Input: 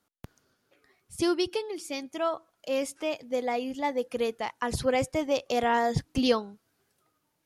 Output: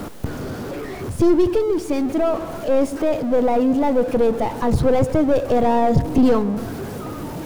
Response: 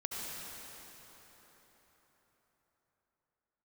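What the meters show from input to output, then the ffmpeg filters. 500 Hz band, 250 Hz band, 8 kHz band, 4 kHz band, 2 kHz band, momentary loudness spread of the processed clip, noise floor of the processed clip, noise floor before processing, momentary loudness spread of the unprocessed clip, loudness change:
+10.5 dB, +13.5 dB, +2.0 dB, −2.5 dB, +1.0 dB, 13 LU, −31 dBFS, −76 dBFS, 9 LU, +10.0 dB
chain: -filter_complex "[0:a]aeval=exprs='val(0)+0.5*0.0237*sgn(val(0))':channel_layout=same,aeval=exprs='(tanh(20*val(0)+0.45)-tanh(0.45))/20':channel_layout=same,tiltshelf=frequency=1200:gain=9.5,asplit=2[link_01][link_02];[1:a]atrim=start_sample=2205,asetrate=57330,aresample=44100,lowpass=1100[link_03];[link_02][link_03]afir=irnorm=-1:irlink=0,volume=-13.5dB[link_04];[link_01][link_04]amix=inputs=2:normalize=0,volume=6.5dB"

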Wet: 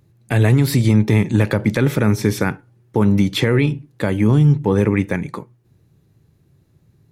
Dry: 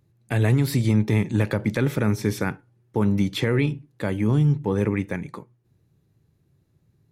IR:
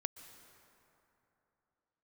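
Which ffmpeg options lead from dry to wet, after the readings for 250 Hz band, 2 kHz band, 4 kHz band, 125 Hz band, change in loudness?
+6.0 dB, +6.0 dB, +7.0 dB, +6.0 dB, +6.0 dB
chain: -af "alimiter=limit=-13.5dB:level=0:latency=1:release=220,volume=8dB"

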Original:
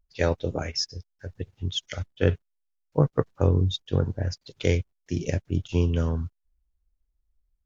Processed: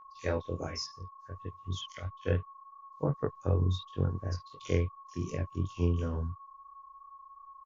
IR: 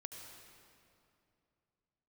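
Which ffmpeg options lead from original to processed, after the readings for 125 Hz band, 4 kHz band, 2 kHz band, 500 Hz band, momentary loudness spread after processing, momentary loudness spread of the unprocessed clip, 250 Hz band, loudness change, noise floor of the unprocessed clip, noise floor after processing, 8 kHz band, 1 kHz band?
−6.5 dB, −10.5 dB, −8.5 dB, −7.5 dB, 21 LU, 13 LU, −7.5 dB, −7.0 dB, −77 dBFS, −55 dBFS, can't be measured, −3.0 dB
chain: -filter_complex "[0:a]acrossover=split=3500[link_01][link_02];[link_01]adelay=50[link_03];[link_03][link_02]amix=inputs=2:normalize=0,aeval=exprs='val(0)+0.00891*sin(2*PI*1100*n/s)':channel_layout=same,flanger=delay=20:depth=3.5:speed=2.8,volume=-5dB"

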